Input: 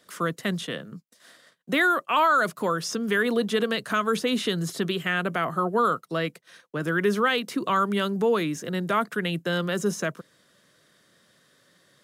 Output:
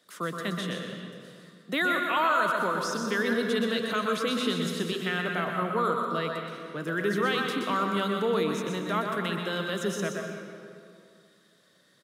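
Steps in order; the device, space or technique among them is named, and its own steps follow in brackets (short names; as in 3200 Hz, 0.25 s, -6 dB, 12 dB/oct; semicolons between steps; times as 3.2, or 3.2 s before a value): PA in a hall (HPF 120 Hz; bell 3800 Hz +4.5 dB 0.27 oct; echo 0.124 s -6.5 dB; reverb RT60 2.3 s, pre-delay 0.115 s, DRR 4 dB); gain -5.5 dB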